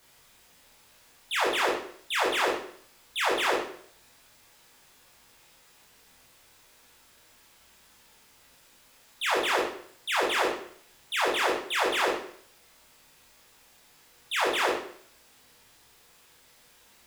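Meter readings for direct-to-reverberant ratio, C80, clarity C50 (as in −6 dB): −5.0 dB, 7.0 dB, 3.0 dB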